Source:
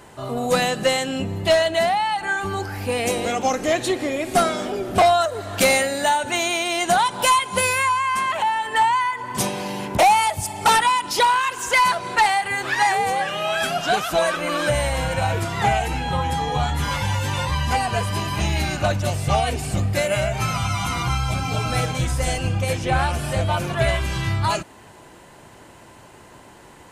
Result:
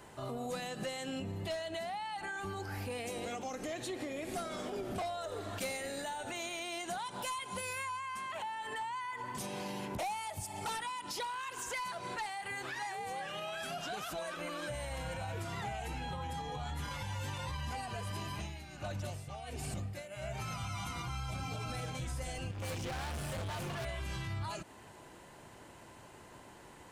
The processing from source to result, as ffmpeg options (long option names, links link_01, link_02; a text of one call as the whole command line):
ffmpeg -i in.wav -filter_complex "[0:a]asettb=1/sr,asplit=3[link_01][link_02][link_03];[link_01]atrim=end=4.034[link_04];[link_02]atrim=start=4.03:end=6.61,asetpts=PTS-STARTPTS,afade=type=in:duration=0.004:curve=qsin,afade=type=out:start_time=2.576:duration=0.004:curve=qsin,asplit=7[link_05][link_06][link_07][link_08][link_09][link_10][link_11];[link_06]adelay=80,afreqshift=-97,volume=-16dB[link_12];[link_07]adelay=160,afreqshift=-194,volume=-20.2dB[link_13];[link_08]adelay=240,afreqshift=-291,volume=-24.3dB[link_14];[link_09]adelay=320,afreqshift=-388,volume=-28.5dB[link_15];[link_10]adelay=400,afreqshift=-485,volume=-32.6dB[link_16];[link_11]adelay=480,afreqshift=-582,volume=-36.8dB[link_17];[link_05][link_12][link_13][link_14][link_15][link_16][link_17]amix=inputs=7:normalize=0,atrim=end_sample=113778[link_18];[link_03]atrim=start=6.606[link_19];[link_04][link_18]acrossfade=duration=0.004:curve1=hsin:curve2=qsin[link_20];[link_20][link_19]acrossfade=duration=0.004:curve1=qsin:curve2=hsin,asettb=1/sr,asplit=3[link_21][link_22][link_23];[link_21]atrim=end=18.294[link_24];[link_22]atrim=start=18.29:end=20.37,asetpts=PTS-STARTPTS,afade=type=in:duration=0.004:curve=qsin,afade=type=out:start_time=2.076:duration=0.004:curve=qsin,aeval=exprs='val(0)*pow(10,-18*(0.5-0.5*cos(2*PI*1.4*n/s))/20)':channel_layout=same[link_25];[link_23]atrim=start=20.366[link_26];[link_24][link_25]acrossfade=duration=0.004:curve1=hsin:curve2=qsin[link_27];[link_27][link_26]acrossfade=duration=0.004:curve1=qsin:curve2=hsin,asettb=1/sr,asplit=3[link_28][link_29][link_30];[link_28]atrim=end=22.514[link_31];[link_29]atrim=start=22.51:end=23.85,asetpts=PTS-STARTPTS,afade=type=in:duration=0.004:curve=qsin,afade=type=out:start_time=1.336:duration=0.004:curve=qsin,volume=28.5dB,asoftclip=hard,volume=-28.5dB[link_32];[link_30]atrim=start=23.846[link_33];[link_31][link_32]acrossfade=duration=0.004:curve1=hsin:curve2=qsin[link_34];[link_34][link_33]acrossfade=duration=0.004:curve1=qsin:curve2=hsin,alimiter=limit=-22.5dB:level=0:latency=1:release=138,acrossover=split=450|3000[link_35][link_36][link_37];[link_36]acompressor=threshold=-34dB:ratio=1.5[link_38];[link_35][link_38][link_37]amix=inputs=3:normalize=0,volume=-8.5dB" out.wav